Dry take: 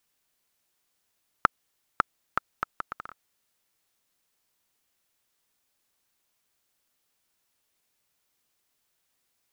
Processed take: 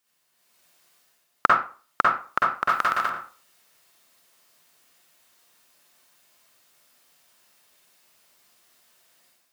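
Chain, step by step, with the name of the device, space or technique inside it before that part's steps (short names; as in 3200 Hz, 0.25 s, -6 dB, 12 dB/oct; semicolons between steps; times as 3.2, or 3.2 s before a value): far laptop microphone (reverb RT60 0.40 s, pre-delay 44 ms, DRR -5.5 dB; HPF 190 Hz 6 dB/oct; AGC gain up to 10.5 dB); 2.69–3.1 high shelf 2300 Hz +11.5 dB; gain -1 dB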